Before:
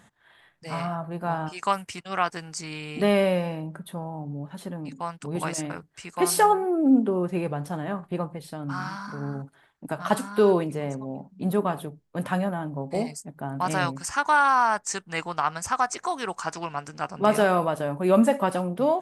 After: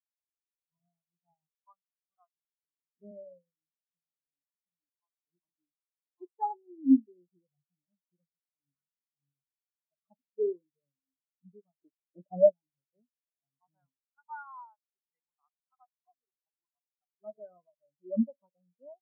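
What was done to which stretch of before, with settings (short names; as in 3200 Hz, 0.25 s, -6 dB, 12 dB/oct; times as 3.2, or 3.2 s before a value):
3.11–5.48 HPF 160 Hz 24 dB/oct
11.78–12.52 small resonant body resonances 350/590 Hz, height 15 dB, ringing for 20 ms
whole clip: spectral expander 4:1; gain -5 dB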